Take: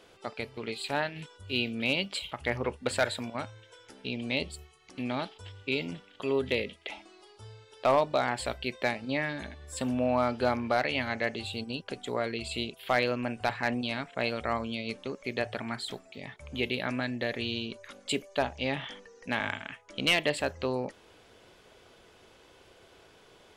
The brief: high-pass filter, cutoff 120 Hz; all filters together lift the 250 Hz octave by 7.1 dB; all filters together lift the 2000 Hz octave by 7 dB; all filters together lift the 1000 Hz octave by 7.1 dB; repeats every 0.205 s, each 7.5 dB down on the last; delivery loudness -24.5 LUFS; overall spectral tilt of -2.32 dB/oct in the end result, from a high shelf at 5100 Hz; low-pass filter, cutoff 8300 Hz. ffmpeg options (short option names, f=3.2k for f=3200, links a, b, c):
-af "highpass=120,lowpass=8.3k,equalizer=f=250:t=o:g=7.5,equalizer=f=1k:t=o:g=7.5,equalizer=f=2k:t=o:g=7.5,highshelf=f=5.1k:g=-6,aecho=1:1:205|410|615|820|1025:0.422|0.177|0.0744|0.0312|0.0131,volume=1dB"